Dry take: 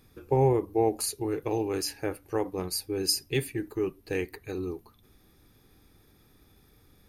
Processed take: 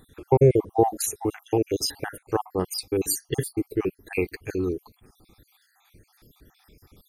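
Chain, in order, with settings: random holes in the spectrogram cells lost 58%; trim +7.5 dB

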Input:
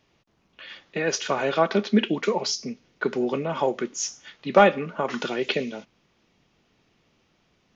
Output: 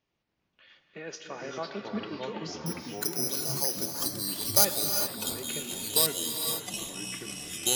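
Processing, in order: 2.66–4.65 s: careless resampling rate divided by 8×, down none, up zero stuff; gated-style reverb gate 440 ms rising, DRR 5.5 dB; ever faster or slower copies 208 ms, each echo -4 st, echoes 3; trim -15.5 dB

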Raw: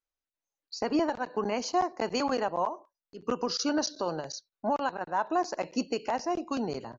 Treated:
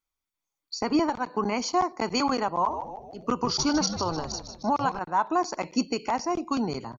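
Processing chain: comb 0.9 ms, depth 46%; 2.52–4.99 s: frequency-shifting echo 153 ms, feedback 50%, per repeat -99 Hz, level -9 dB; trim +3.5 dB

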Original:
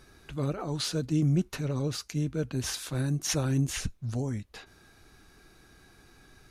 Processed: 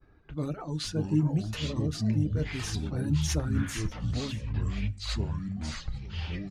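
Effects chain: level-controlled noise filter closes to 1.6 kHz, open at -26 dBFS; expander -53 dBFS; in parallel at -11 dB: saturation -30 dBFS, distortion -9 dB; on the sum: bass shelf 190 Hz +5.5 dB; delay 600 ms -16 dB; FDN reverb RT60 0.35 s, low-frequency decay 1.35×, high-frequency decay 0.85×, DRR 10.5 dB; reverb removal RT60 1.5 s; ever faster or slower copies 429 ms, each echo -6 st, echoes 3; trim -5 dB

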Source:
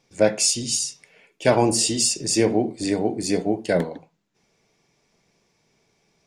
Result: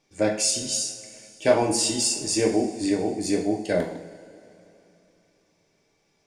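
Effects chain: two-slope reverb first 0.52 s, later 3.2 s, from -18 dB, DRR 2 dB; trim -4.5 dB

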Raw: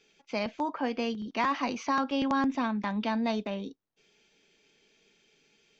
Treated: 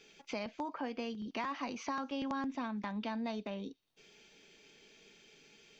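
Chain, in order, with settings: compression 2.5:1, threshold -48 dBFS, peak gain reduction 16 dB; on a send: feedback echo behind a high-pass 120 ms, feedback 67%, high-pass 4.7 kHz, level -23.5 dB; on the sum: trim +5 dB

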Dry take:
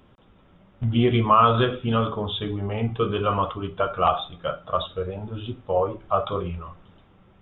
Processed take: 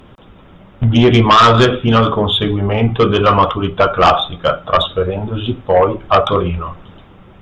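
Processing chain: harmonic-percussive split percussive +4 dB; in parallel at -4 dB: sine folder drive 9 dB, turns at -4 dBFS

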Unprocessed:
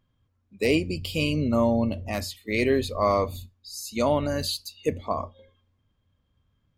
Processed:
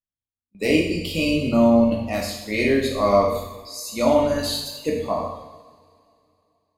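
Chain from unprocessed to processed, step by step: spectral noise reduction 11 dB; gate with hold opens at -43 dBFS; two-slope reverb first 0.9 s, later 3.1 s, from -22 dB, DRR -2 dB

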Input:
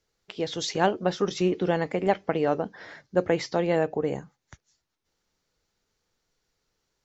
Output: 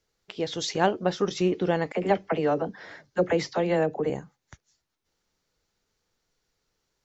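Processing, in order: 1.92–4.10 s: phase dispersion lows, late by 40 ms, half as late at 560 Hz

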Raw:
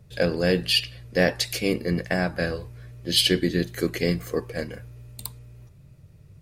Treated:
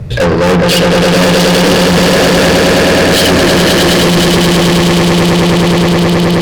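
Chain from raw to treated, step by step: low-pass 2.2 kHz 6 dB/octave; echo with a slow build-up 105 ms, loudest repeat 8, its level -6 dB; valve stage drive 33 dB, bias 0.45; loudness maximiser +35.5 dB; trim -4.5 dB

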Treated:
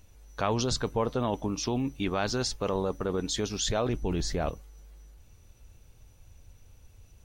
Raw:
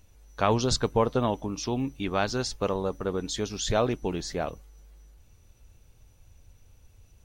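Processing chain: 3.89–4.50 s: bass shelf 120 Hz +11.5 dB; in parallel at -1.5 dB: compressor with a negative ratio -29 dBFS, ratio -0.5; on the sum: trim -5.5 dB

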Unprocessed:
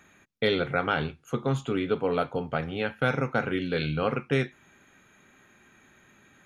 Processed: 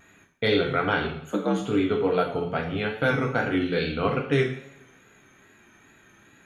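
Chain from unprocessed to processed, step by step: 1.21–1.62 s: frequency shift +64 Hz; two-slope reverb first 0.57 s, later 2.1 s, from -25 dB, DRR 0.5 dB; vibrato 2.4 Hz 51 cents

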